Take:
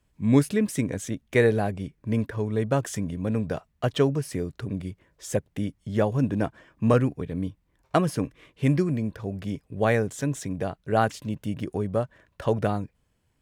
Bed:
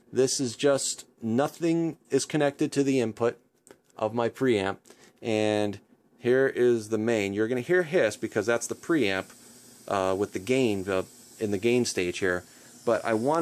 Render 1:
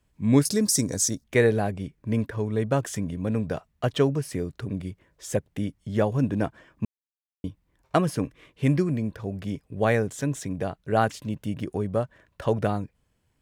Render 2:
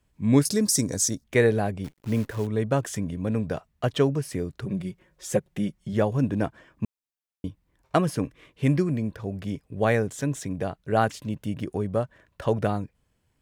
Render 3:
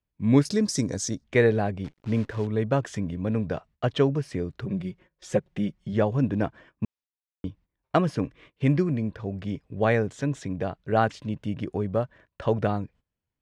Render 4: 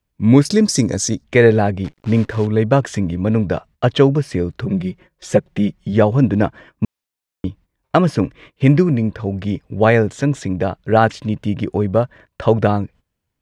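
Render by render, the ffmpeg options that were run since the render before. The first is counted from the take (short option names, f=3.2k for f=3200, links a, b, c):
-filter_complex "[0:a]asettb=1/sr,asplit=3[a][b][c];[a]atrim=end=0.454[d];[b]atrim=start=0.45:end=1.24,asetpts=PTS-STARTPTS,afade=t=in:d=0.004:c=qsin,afade=t=out:st=0.786:d=0.004:c=qsin,highshelf=f=3.8k:t=q:w=3:g=11[e];[c]atrim=start=1.236[f];[d][e]acrossfade=d=0.004:c1=hsin:c2=qsin[g];[g][f]acrossfade=d=0.004:c1=qsin:c2=hsin,asplit=3[h][i][j];[h]atrim=end=6.85,asetpts=PTS-STARTPTS,afade=t=out:st=6.846:d=0.004:c=hsin[k];[i]atrim=start=6.85:end=7.44,asetpts=PTS-STARTPTS,volume=0[l];[j]atrim=start=7.44,asetpts=PTS-STARTPTS,afade=t=in:d=0.004:c=hsin[m];[k][l][m]concat=n=3:v=0:a=1"
-filter_complex "[0:a]asettb=1/sr,asplit=3[a][b][c];[a]atrim=end=1.844[d];[b]atrim=start=1.84:end=2.47,asetpts=PTS-STARTPTS,afade=t=in:d=0.004:c=qsin,afade=t=out:st=0.626:d=0.004:c=qsin,acrusher=bits=8:dc=4:mix=0:aa=0.000001[e];[c]atrim=start=2.466[f];[d][e]acrossfade=d=0.004:c1=hsin:c2=qsin[g];[g][f]acrossfade=d=0.004:c1=qsin:c2=hsin,asettb=1/sr,asplit=3[h][i][j];[h]atrim=end=4.644[k];[i]atrim=start=4.64:end=5.93,asetpts=PTS-STARTPTS,afade=t=in:d=0.004:c=qsin,afade=t=out:st=1.286:d=0.004:c=qsin,aecho=1:1:5.5:0.65,atrim=end_sample=56889[l];[j]atrim=start=5.926[m];[k][l]acrossfade=d=0.004:c1=hsin:c2=qsin[n];[n][m]acrossfade=d=0.004:c1=qsin:c2=hsin"
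-af "agate=range=-16dB:threshold=-51dB:ratio=16:detection=peak,lowpass=4.7k"
-af "volume=10dB,alimiter=limit=-1dB:level=0:latency=1"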